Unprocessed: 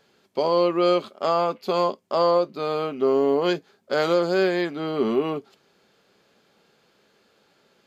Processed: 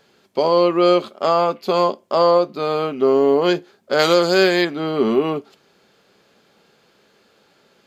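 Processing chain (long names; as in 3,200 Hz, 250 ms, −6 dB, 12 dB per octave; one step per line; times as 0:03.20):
0:03.99–0:04.65: high-shelf EQ 2,300 Hz +10 dB
on a send: convolution reverb, pre-delay 31 ms, DRR 23.5 dB
on the sum: level +5 dB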